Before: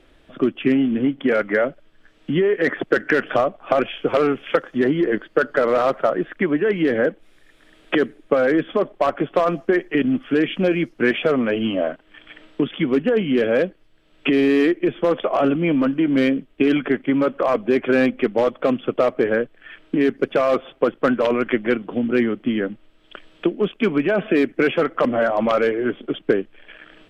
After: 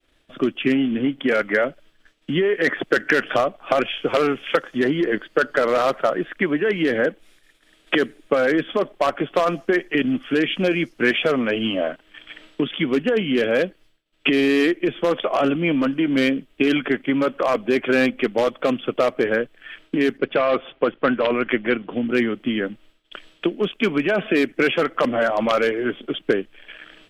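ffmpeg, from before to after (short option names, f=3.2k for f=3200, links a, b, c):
-filter_complex "[0:a]asplit=3[a][b][c];[a]afade=t=out:st=20.17:d=0.02[d];[b]lowpass=f=3.5k:w=0.5412,lowpass=f=3.5k:w=1.3066,afade=t=in:st=20.17:d=0.02,afade=t=out:st=22.07:d=0.02[e];[c]afade=t=in:st=22.07:d=0.02[f];[d][e][f]amix=inputs=3:normalize=0,agate=range=-33dB:threshold=-45dB:ratio=3:detection=peak,highshelf=f=2.3k:g=10.5,volume=-2dB"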